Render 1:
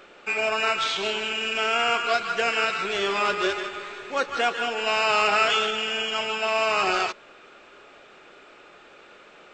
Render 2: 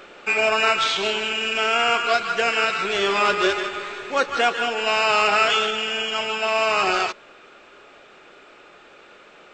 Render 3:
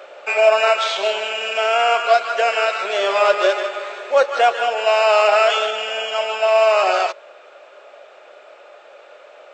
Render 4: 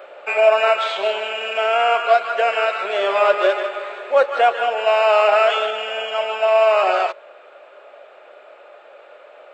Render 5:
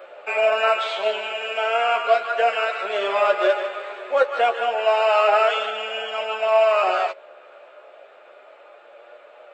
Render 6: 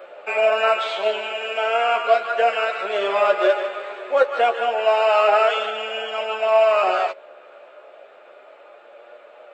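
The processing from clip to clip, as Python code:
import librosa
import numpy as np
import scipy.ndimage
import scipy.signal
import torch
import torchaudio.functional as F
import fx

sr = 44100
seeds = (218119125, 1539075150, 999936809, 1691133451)

y1 = fx.rider(x, sr, range_db=4, speed_s=2.0)
y1 = y1 * librosa.db_to_amplitude(3.0)
y2 = fx.highpass_res(y1, sr, hz=590.0, q=4.9)
y2 = y2 * librosa.db_to_amplitude(-1.0)
y3 = fx.peak_eq(y2, sr, hz=5900.0, db=-13.5, octaves=0.93)
y4 = fx.chorus_voices(y3, sr, voices=2, hz=0.33, base_ms=11, depth_ms=2.7, mix_pct=35)
y5 = fx.low_shelf(y4, sr, hz=280.0, db=7.5)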